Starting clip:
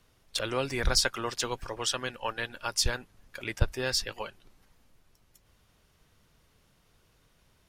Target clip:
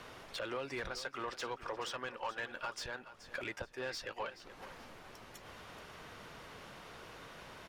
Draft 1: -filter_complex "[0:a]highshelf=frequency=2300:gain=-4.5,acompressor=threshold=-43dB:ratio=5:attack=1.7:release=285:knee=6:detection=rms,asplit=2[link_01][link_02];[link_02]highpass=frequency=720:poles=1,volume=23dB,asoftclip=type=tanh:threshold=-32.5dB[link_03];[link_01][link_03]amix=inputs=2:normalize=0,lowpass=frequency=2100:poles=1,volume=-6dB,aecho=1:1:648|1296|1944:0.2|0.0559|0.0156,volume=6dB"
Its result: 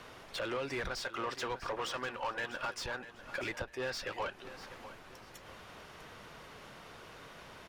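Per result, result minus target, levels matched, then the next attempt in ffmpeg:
echo 220 ms late; downward compressor: peak gain reduction −6.5 dB
-filter_complex "[0:a]highshelf=frequency=2300:gain=-4.5,acompressor=threshold=-43dB:ratio=5:attack=1.7:release=285:knee=6:detection=rms,asplit=2[link_01][link_02];[link_02]highpass=frequency=720:poles=1,volume=23dB,asoftclip=type=tanh:threshold=-32.5dB[link_03];[link_01][link_03]amix=inputs=2:normalize=0,lowpass=frequency=2100:poles=1,volume=-6dB,aecho=1:1:428|856|1284:0.2|0.0559|0.0156,volume=6dB"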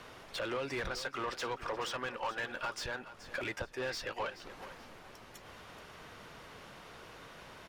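downward compressor: peak gain reduction −6.5 dB
-filter_complex "[0:a]highshelf=frequency=2300:gain=-4.5,acompressor=threshold=-51dB:ratio=5:attack=1.7:release=285:knee=6:detection=rms,asplit=2[link_01][link_02];[link_02]highpass=frequency=720:poles=1,volume=23dB,asoftclip=type=tanh:threshold=-32.5dB[link_03];[link_01][link_03]amix=inputs=2:normalize=0,lowpass=frequency=2100:poles=1,volume=-6dB,aecho=1:1:428|856|1284:0.2|0.0559|0.0156,volume=6dB"

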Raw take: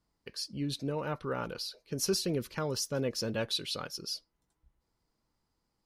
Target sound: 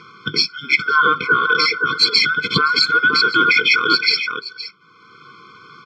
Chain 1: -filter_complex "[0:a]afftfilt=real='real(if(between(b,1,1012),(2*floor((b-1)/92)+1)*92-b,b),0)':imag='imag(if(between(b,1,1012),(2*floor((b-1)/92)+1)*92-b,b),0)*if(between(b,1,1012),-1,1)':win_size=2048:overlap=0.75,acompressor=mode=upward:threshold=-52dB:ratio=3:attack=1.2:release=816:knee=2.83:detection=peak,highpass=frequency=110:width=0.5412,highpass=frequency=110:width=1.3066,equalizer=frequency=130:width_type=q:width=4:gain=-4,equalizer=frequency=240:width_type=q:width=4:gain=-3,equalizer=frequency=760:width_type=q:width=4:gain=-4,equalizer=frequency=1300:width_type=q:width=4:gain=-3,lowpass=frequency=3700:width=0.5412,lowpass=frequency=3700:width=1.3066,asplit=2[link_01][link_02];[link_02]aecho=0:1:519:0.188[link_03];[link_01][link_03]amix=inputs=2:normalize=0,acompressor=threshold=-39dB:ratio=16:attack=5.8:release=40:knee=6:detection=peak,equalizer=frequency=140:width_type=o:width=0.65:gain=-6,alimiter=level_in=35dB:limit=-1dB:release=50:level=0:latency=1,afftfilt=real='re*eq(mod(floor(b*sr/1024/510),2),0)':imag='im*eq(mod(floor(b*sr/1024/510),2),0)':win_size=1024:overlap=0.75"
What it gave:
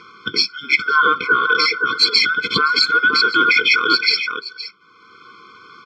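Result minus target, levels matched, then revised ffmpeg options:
125 Hz band −7.5 dB
-filter_complex "[0:a]afftfilt=real='real(if(between(b,1,1012),(2*floor((b-1)/92)+1)*92-b,b),0)':imag='imag(if(between(b,1,1012),(2*floor((b-1)/92)+1)*92-b,b),0)*if(between(b,1,1012),-1,1)':win_size=2048:overlap=0.75,acompressor=mode=upward:threshold=-52dB:ratio=3:attack=1.2:release=816:knee=2.83:detection=peak,highpass=frequency=110:width=0.5412,highpass=frequency=110:width=1.3066,equalizer=frequency=130:width_type=q:width=4:gain=-4,equalizer=frequency=240:width_type=q:width=4:gain=-3,equalizer=frequency=760:width_type=q:width=4:gain=-4,equalizer=frequency=1300:width_type=q:width=4:gain=-3,lowpass=frequency=3700:width=0.5412,lowpass=frequency=3700:width=1.3066,asplit=2[link_01][link_02];[link_02]aecho=0:1:519:0.188[link_03];[link_01][link_03]amix=inputs=2:normalize=0,acompressor=threshold=-39dB:ratio=16:attack=5.8:release=40:knee=6:detection=peak,equalizer=frequency=140:width_type=o:width=0.65:gain=5.5,alimiter=level_in=35dB:limit=-1dB:release=50:level=0:latency=1,afftfilt=real='re*eq(mod(floor(b*sr/1024/510),2),0)':imag='im*eq(mod(floor(b*sr/1024/510),2),0)':win_size=1024:overlap=0.75"

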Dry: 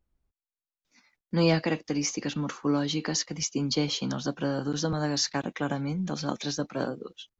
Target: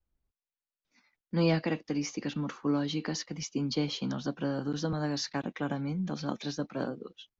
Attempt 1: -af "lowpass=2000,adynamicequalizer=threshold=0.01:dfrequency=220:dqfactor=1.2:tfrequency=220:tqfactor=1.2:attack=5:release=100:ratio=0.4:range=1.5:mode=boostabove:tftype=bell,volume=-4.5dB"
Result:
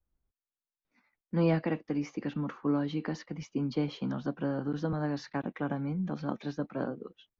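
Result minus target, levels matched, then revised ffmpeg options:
4,000 Hz band −10.0 dB
-af "lowpass=5000,adynamicequalizer=threshold=0.01:dfrequency=220:dqfactor=1.2:tfrequency=220:tqfactor=1.2:attack=5:release=100:ratio=0.4:range=1.5:mode=boostabove:tftype=bell,volume=-4.5dB"

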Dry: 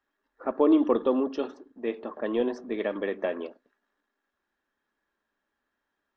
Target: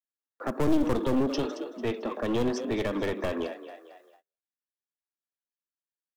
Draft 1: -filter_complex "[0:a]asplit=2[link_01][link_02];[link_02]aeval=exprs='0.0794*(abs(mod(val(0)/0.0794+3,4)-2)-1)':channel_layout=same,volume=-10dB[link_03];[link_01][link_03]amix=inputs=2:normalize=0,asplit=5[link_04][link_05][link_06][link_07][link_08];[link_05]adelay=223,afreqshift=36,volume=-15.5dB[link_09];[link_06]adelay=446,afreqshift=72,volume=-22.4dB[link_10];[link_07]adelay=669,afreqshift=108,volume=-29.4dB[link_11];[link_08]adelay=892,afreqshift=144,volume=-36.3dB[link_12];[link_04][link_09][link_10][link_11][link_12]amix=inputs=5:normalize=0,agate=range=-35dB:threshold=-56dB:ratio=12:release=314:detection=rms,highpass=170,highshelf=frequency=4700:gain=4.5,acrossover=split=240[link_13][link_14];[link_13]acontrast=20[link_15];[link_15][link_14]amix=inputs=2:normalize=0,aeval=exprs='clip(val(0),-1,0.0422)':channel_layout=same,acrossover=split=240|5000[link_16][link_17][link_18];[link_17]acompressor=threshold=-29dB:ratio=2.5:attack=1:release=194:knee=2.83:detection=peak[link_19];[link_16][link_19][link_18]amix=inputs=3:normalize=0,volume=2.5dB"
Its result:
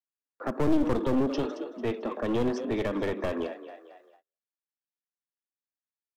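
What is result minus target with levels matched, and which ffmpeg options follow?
8,000 Hz band −6.0 dB
-filter_complex "[0:a]asplit=2[link_01][link_02];[link_02]aeval=exprs='0.0794*(abs(mod(val(0)/0.0794+3,4)-2)-1)':channel_layout=same,volume=-10dB[link_03];[link_01][link_03]amix=inputs=2:normalize=0,asplit=5[link_04][link_05][link_06][link_07][link_08];[link_05]adelay=223,afreqshift=36,volume=-15.5dB[link_09];[link_06]adelay=446,afreqshift=72,volume=-22.4dB[link_10];[link_07]adelay=669,afreqshift=108,volume=-29.4dB[link_11];[link_08]adelay=892,afreqshift=144,volume=-36.3dB[link_12];[link_04][link_09][link_10][link_11][link_12]amix=inputs=5:normalize=0,agate=range=-35dB:threshold=-56dB:ratio=12:release=314:detection=rms,highpass=170,highshelf=frequency=4700:gain=15.5,acrossover=split=240[link_13][link_14];[link_13]acontrast=20[link_15];[link_15][link_14]amix=inputs=2:normalize=0,aeval=exprs='clip(val(0),-1,0.0422)':channel_layout=same,acrossover=split=240|5000[link_16][link_17][link_18];[link_17]acompressor=threshold=-29dB:ratio=2.5:attack=1:release=194:knee=2.83:detection=peak[link_19];[link_16][link_19][link_18]amix=inputs=3:normalize=0,volume=2.5dB"

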